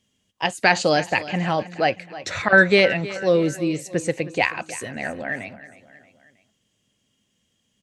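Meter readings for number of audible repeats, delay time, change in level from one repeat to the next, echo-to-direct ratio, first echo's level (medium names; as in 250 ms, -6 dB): 3, 316 ms, -6.0 dB, -15.5 dB, -16.5 dB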